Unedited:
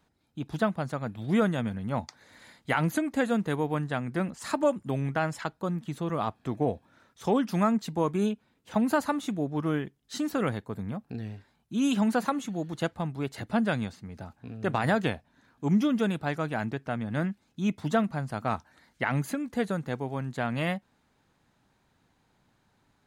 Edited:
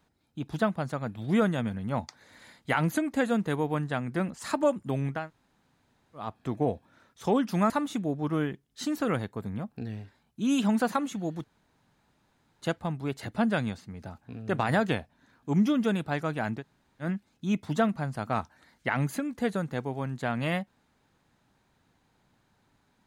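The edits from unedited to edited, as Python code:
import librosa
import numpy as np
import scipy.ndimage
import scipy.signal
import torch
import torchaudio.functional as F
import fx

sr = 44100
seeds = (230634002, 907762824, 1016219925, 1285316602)

y = fx.edit(x, sr, fx.room_tone_fill(start_s=5.19, length_s=1.06, crossfade_s=0.24),
    fx.cut(start_s=7.7, length_s=1.33),
    fx.insert_room_tone(at_s=12.77, length_s=1.18),
    fx.room_tone_fill(start_s=16.75, length_s=0.44, crossfade_s=0.1), tone=tone)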